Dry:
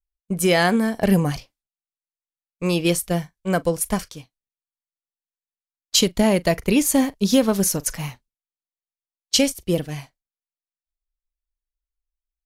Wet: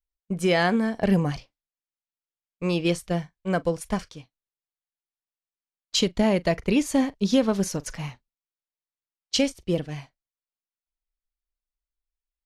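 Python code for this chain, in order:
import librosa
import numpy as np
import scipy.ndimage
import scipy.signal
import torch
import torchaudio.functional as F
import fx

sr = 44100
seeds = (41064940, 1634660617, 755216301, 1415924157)

y = scipy.signal.sosfilt(scipy.signal.bessel(2, 4800.0, 'lowpass', norm='mag', fs=sr, output='sos'), x)
y = y * librosa.db_to_amplitude(-3.5)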